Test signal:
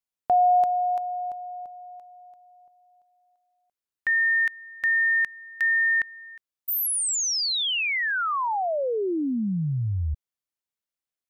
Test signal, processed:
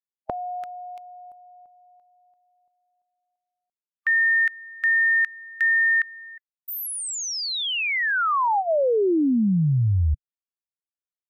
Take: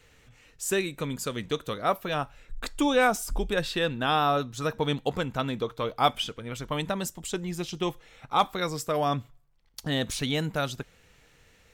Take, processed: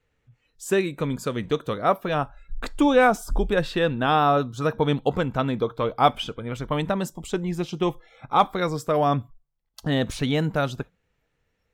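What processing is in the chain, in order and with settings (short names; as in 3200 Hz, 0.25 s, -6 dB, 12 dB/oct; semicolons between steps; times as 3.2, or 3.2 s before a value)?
spectral noise reduction 18 dB; high shelf 2700 Hz -11.5 dB; gain +6 dB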